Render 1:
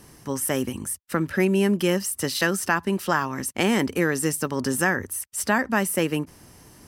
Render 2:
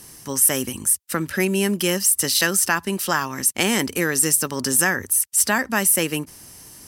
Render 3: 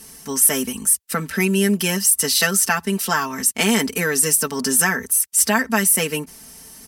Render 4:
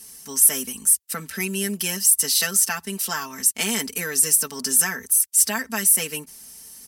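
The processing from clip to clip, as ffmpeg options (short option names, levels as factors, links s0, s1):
-af "equalizer=f=12000:t=o:w=2.8:g=13,volume=0.891"
-af "aecho=1:1:4.5:0.92,volume=0.891"
-af "highshelf=f=2900:g=10.5,volume=0.316"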